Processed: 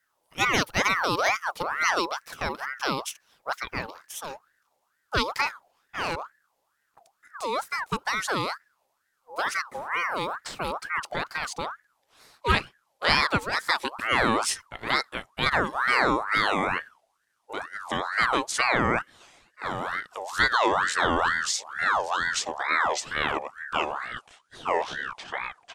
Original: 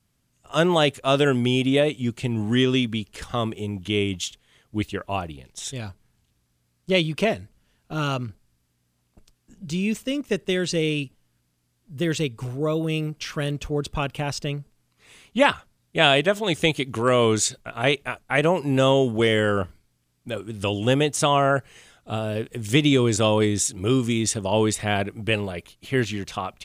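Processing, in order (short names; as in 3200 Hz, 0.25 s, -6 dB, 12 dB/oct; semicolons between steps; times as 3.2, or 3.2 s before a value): speed glide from 142% -> 65%; ring modulator with a swept carrier 1200 Hz, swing 45%, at 2.2 Hz; gain -1.5 dB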